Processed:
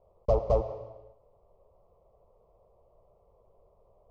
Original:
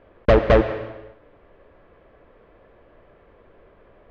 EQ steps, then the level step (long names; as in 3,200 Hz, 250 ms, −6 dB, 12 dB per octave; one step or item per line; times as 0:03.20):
flat-topped bell 2,400 Hz −14.5 dB
phaser with its sweep stopped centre 680 Hz, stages 4
−8.5 dB